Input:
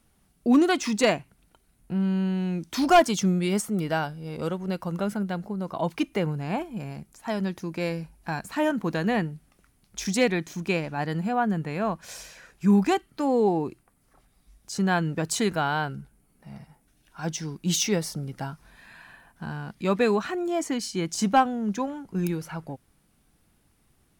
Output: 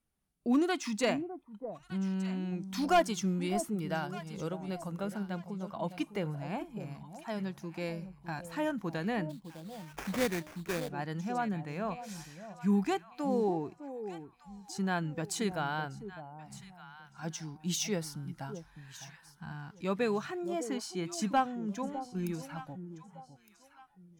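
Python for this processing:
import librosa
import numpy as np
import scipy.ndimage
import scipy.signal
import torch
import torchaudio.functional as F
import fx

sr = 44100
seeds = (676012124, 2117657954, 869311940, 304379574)

y = fx.echo_alternate(x, sr, ms=606, hz=820.0, feedback_pct=52, wet_db=-9.5)
y = fx.noise_reduce_blind(y, sr, reduce_db=10)
y = fx.sample_hold(y, sr, seeds[0], rate_hz=4100.0, jitter_pct=20, at=(9.29, 10.88), fade=0.02)
y = y * librosa.db_to_amplitude(-8.5)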